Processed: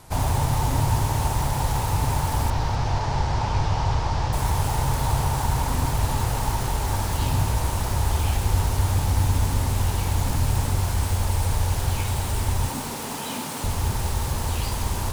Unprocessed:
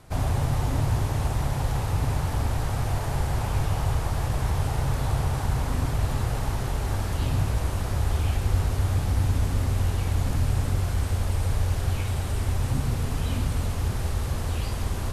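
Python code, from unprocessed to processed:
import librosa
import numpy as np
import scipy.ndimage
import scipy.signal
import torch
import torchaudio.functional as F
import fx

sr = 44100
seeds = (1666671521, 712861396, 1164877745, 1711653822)

y = fx.tracing_dist(x, sr, depth_ms=0.044)
y = fx.cheby1_lowpass(y, sr, hz=5500.0, order=3, at=(2.5, 4.33))
y = fx.peak_eq(y, sr, hz=910.0, db=10.0, octaves=0.28)
y = fx.highpass(y, sr, hz=190.0, slope=24, at=(12.69, 13.64))
y = fx.high_shelf(y, sr, hz=4200.0, db=9.5)
y = fx.echo_feedback(y, sr, ms=255, feedback_pct=30, wet_db=-18.0)
y = y * 10.0 ** (1.5 / 20.0)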